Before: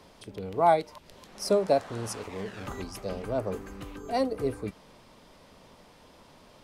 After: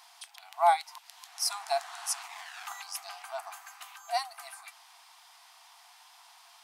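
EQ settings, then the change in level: brick-wall FIR high-pass 670 Hz; high shelf 4300 Hz +8.5 dB; 0.0 dB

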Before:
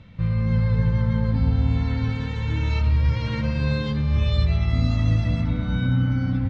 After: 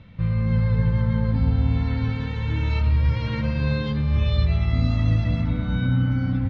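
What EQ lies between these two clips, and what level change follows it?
LPF 4800 Hz 12 dB/oct; 0.0 dB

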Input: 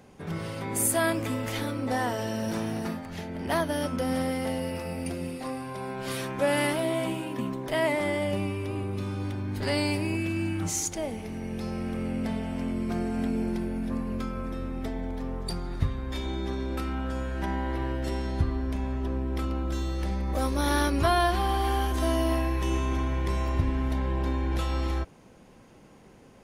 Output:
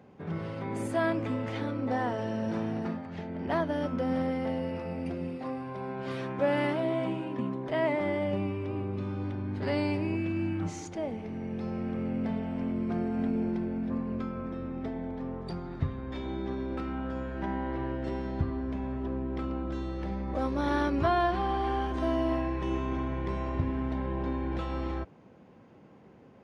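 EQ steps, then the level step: HPF 94 Hz 12 dB/oct; tape spacing loss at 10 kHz 27 dB; 0.0 dB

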